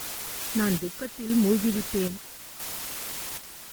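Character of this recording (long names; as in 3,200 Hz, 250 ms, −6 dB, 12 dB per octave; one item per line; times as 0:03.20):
phaser sweep stages 4, 1.5 Hz, lowest notch 560–1,300 Hz
a quantiser's noise floor 6 bits, dither triangular
chopped level 0.77 Hz, depth 60%, duty 60%
Opus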